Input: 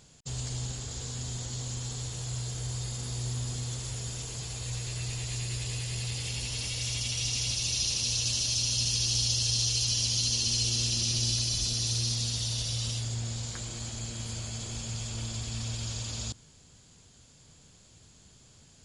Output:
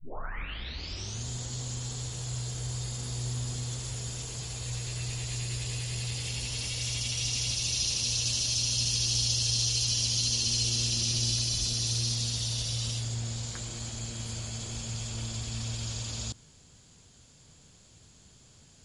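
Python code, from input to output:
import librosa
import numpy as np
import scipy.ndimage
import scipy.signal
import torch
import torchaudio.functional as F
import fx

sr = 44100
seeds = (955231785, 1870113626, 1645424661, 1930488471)

y = fx.tape_start_head(x, sr, length_s=1.28)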